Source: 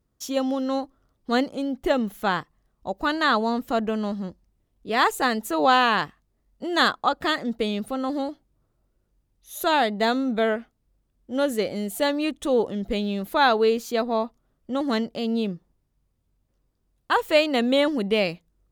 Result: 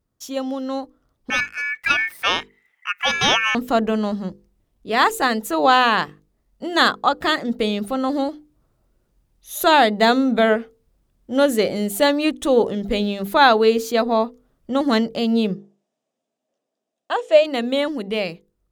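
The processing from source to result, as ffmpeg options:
-filter_complex "[0:a]asettb=1/sr,asplit=3[a][b][c];[a]atrim=end=1.304[d];[b]atrim=start=1.3:end=3.55,asetpts=PTS-STARTPTS,afade=t=in:d=0.004:c=qsin,afade=t=out:st=2.246:d=0.004:c=qsin,aeval=exprs='val(0)*sin(2*PI*2000*n/s)':c=same[e];[c]atrim=start=3.546[f];[d][e]acrossfade=d=0.004:c1=hsin:c2=qsin[g];[g][f]acrossfade=d=0.004:c1=qsin:c2=hsin,asplit=3[h][i][j];[h]afade=t=out:st=15.54:d=0.02[k];[i]highpass=f=260:w=0.5412,highpass=f=260:w=1.3066,equalizer=f=350:t=q:w=4:g=-5,equalizer=f=650:t=q:w=4:g=10,equalizer=f=1k:t=q:w=4:g=-6,equalizer=f=1.4k:t=q:w=4:g=-6,equalizer=f=2.1k:t=q:w=4:g=-5,equalizer=f=4.4k:t=q:w=4:g=-6,lowpass=f=7.9k:w=0.5412,lowpass=f=7.9k:w=1.3066,afade=t=in:st=15.54:d=0.02,afade=t=out:st=17.43:d=0.02[l];[j]afade=t=in:st=17.43:d=0.02[m];[k][l][m]amix=inputs=3:normalize=0,bandreject=f=50:t=h:w=6,bandreject=f=100:t=h:w=6,bandreject=f=150:t=h:w=6,bandreject=f=200:t=h:w=6,bandreject=f=250:t=h:w=6,bandreject=f=300:t=h:w=6,bandreject=f=350:t=h:w=6,bandreject=f=400:t=h:w=6,bandreject=f=450:t=h:w=6,bandreject=f=500:t=h:w=6,dynaudnorm=f=230:g=13:m=11.5dB,volume=-1dB"

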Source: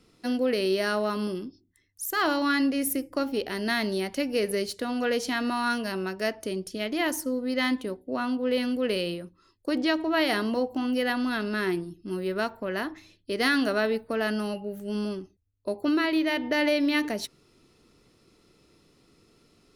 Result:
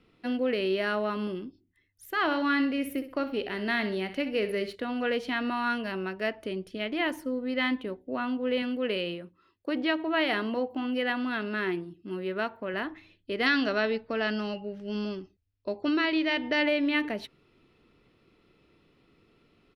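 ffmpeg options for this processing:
-filter_complex "[0:a]asplit=3[a][b][c];[a]afade=t=out:st=2.3:d=0.02[d];[b]aecho=1:1:64|128|192:0.251|0.0829|0.0274,afade=t=in:st=2.3:d=0.02,afade=t=out:st=4.74:d=0.02[e];[c]afade=t=in:st=4.74:d=0.02[f];[d][e][f]amix=inputs=3:normalize=0,asettb=1/sr,asplit=3[g][h][i];[g]atrim=end=8.624[j];[h]atrim=start=8.62:end=12.74,asetpts=PTS-STARTPTS,afade=t=in:d=0.004:c=qsin,afade=t=out:st=4.116:d=0.004:c=qsin,highpass=f=130:p=1[k];[i]atrim=start=12.736[l];[j][k]acrossfade=d=0.004:c1=hsin:c2=qsin[m];[m][l]acrossfade=d=0.004:c1=qsin:c2=hsin,asettb=1/sr,asplit=3[n][o][p];[n]atrim=end=13.464[q];[o]atrim=start=13.46:end=16.63,asetpts=PTS-STARTPTS,afade=t=in:d=0.004:c=qsin,afade=t=out:st=3.166:d=0.004:c=qsin,lowpass=f=5.4k:t=q:w=4.6[r];[p]atrim=start=16.626[s];[q][r]acrossfade=d=0.004:c1=hsin:c2=qsin[t];[t][s]acrossfade=d=0.004:c1=qsin:c2=hsin,highshelf=f=4.3k:t=q:w=1.5:g=-13.5,volume=-2.5dB"

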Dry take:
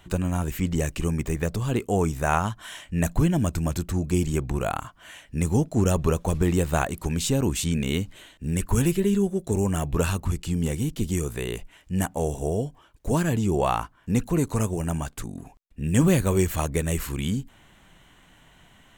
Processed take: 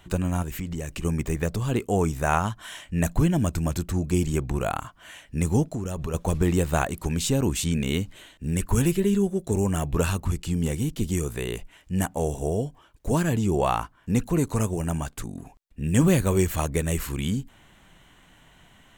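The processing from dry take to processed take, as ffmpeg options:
-filter_complex "[0:a]asettb=1/sr,asplit=3[a][b][c];[a]atrim=end=0.424[d];[b]atrim=start=0.42:end=1.05,asetpts=PTS-STARTPTS,afade=t=in:d=0.004:c=qsin,afade=t=out:st=0.626:d=0.004:c=qsin,acompressor=threshold=-28dB:ratio=4:attack=3.2:release=140:knee=1:detection=peak[e];[c]atrim=start=1.046[f];[d][e]acrossfade=d=0.004:c1=hsin:c2=qsin[g];[g][f]acrossfade=d=0.004:c1=qsin:c2=hsin,asettb=1/sr,asplit=3[h][i][j];[h]atrim=end=5.664[k];[i]atrim=start=5.66:end=6.14,asetpts=PTS-STARTPTS,afade=t=in:d=0.004:c=qsin,afade=t=out:st=0.476:d=0.004:c=qsin,acompressor=threshold=-25dB:ratio=12:attack=3.2:release=140:knee=1:detection=peak[l];[j]atrim=start=6.136[m];[k][l]acrossfade=d=0.004:c1=hsin:c2=qsin[n];[n][m]acrossfade=d=0.004:c1=qsin:c2=hsin"

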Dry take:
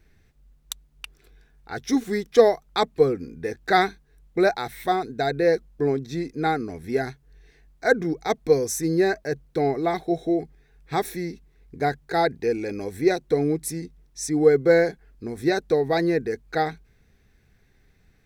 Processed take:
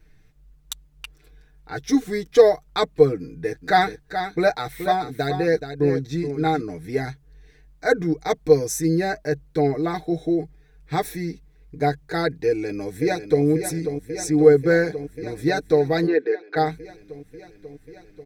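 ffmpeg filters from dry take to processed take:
-filter_complex "[0:a]asettb=1/sr,asplit=3[a][b][c];[a]atrim=end=3.194[d];[b]atrim=start=3.19:end=6.61,asetpts=PTS-STARTPTS,afade=t=in:d=0.004:c=qsin,afade=t=out:st=3.416:d=0.004:c=qsin,aecho=1:1:426:0.355,atrim=end_sample=150822[e];[c]atrim=start=6.606[f];[d][e]acrossfade=d=0.004:c1=hsin:c2=qsin[g];[g][f]acrossfade=d=0.004:c1=qsin:c2=hsin,asplit=2[h][i];[i]afade=t=in:st=12.47:d=0.01,afade=t=out:st=13.44:d=0.01,aecho=0:1:540|1080|1620|2160|2700|3240|3780|4320|4860|5400|5940|6480:0.375837|0.30067|0.240536|0.192429|0.153943|0.123154|0.0985235|0.0788188|0.0630551|0.050444|0.0403552|0.0322842[j];[h][j]amix=inputs=2:normalize=0,asplit=3[k][l][m];[k]afade=t=out:st=16.06:d=0.02[n];[l]highpass=f=310:w=0.5412,highpass=f=310:w=1.3066,equalizer=f=390:t=q:w=4:g=5,equalizer=f=910:t=q:w=4:g=3,equalizer=f=1.6k:t=q:w=4:g=4,lowpass=f=4.1k:w=0.5412,lowpass=f=4.1k:w=1.3066,afade=t=in:st=16.06:d=0.02,afade=t=out:st=16.55:d=0.02[o];[m]afade=t=in:st=16.55:d=0.02[p];[n][o][p]amix=inputs=3:normalize=0,lowshelf=f=120:g=5,aecho=1:1:6.6:0.71,volume=-1dB"

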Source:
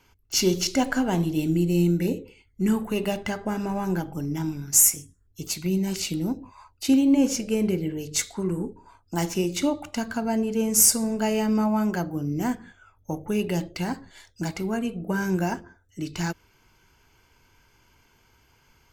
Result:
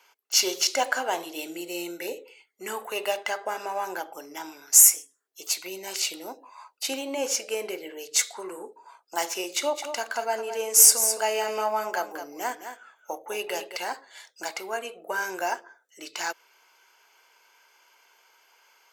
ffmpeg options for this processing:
-filter_complex "[0:a]asettb=1/sr,asplit=3[a][b][c];[a]atrim=end=9.534[d];[b]atrim=start=9.53:end=13.77,asetpts=PTS-STARTPTS,afade=t=in:d=0.004:c=qsin,afade=t=out:st=4.236:d=0.004:c=qsin,aecho=1:1:214:0.335,atrim=end_sample=186984[e];[c]atrim=start=13.766[f];[d][e]acrossfade=d=0.004:c1=hsin:c2=qsin[g];[g][f]acrossfade=d=0.004:c1=qsin:c2=hsin,highpass=f=510:w=0.5412,highpass=f=510:w=1.3066,volume=3dB"

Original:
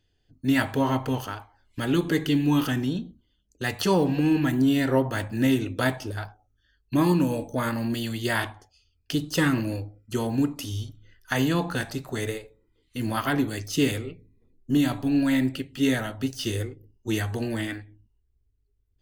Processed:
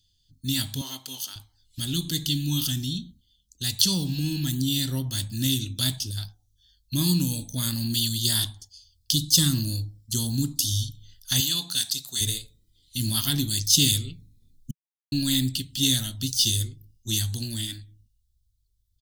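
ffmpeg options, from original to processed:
-filter_complex "[0:a]asettb=1/sr,asplit=3[a][b][c];[a]atrim=end=0.814[d];[b]atrim=start=0.81:end=1.36,asetpts=PTS-STARTPTS,afade=t=in:d=0.004:c=qsin,afade=t=out:st=0.546:d=0.004:c=qsin,highpass=440[e];[c]atrim=start=1.356[f];[d][e]acrossfade=d=0.004:c1=hsin:c2=qsin[g];[g][f]acrossfade=d=0.004:c1=qsin:c2=hsin,asettb=1/sr,asplit=3[h][i][j];[h]atrim=end=8.084[k];[i]atrim=start=8.08:end=10.84,asetpts=PTS-STARTPTS,afade=t=in:d=0.004:c=qsin,afade=t=out:st=2.756:d=0.004:c=qsin,equalizer=f=2.4k:t=o:w=0.54:g=-8[l];[j]atrim=start=10.836[m];[k][l]acrossfade=d=0.004:c1=hsin:c2=qsin[n];[n][m]acrossfade=d=0.004:c1=qsin:c2=hsin,asettb=1/sr,asplit=3[o][p][q];[o]atrim=end=11.404[r];[p]atrim=start=11.4:end=12.21,asetpts=PTS-STARTPTS,afade=t=in:d=0.004:c=qsin,afade=t=out:st=0.806:d=0.004:c=qsin,highpass=f=840:p=1[s];[q]atrim=start=12.206[t];[r][s]acrossfade=d=0.004:c1=hsin:c2=qsin[u];[u][t]acrossfade=d=0.004:c1=qsin:c2=hsin,asplit=3[v][w][x];[v]atrim=end=14.71,asetpts=PTS-STARTPTS,afade=t=out:st=14.706:d=0.004:c=hsin[y];[w]atrim=start=14.71:end=15.12,asetpts=PTS-STARTPTS,volume=0[z];[x]atrim=start=15.12,asetpts=PTS-STARTPTS,afade=t=in:d=0.004:c=hsin[aa];[y][z][aa]concat=n=3:v=0:a=1,firequalizer=gain_entry='entry(150,0);entry(450,-22);entry(2300,-12);entry(3500,11)':delay=0.05:min_phase=1,dynaudnorm=f=570:g=11:m=5dB"

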